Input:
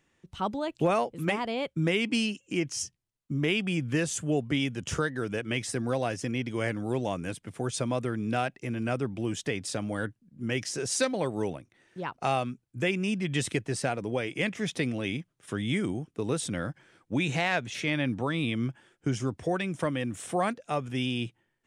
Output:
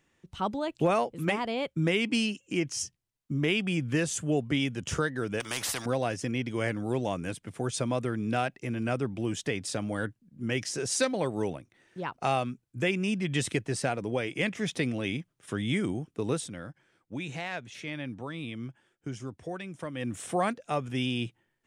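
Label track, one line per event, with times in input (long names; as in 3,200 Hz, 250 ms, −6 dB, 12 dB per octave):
5.400000	5.860000	every bin compressed towards the loudest bin 4 to 1
16.340000	20.080000	duck −8.5 dB, fades 0.15 s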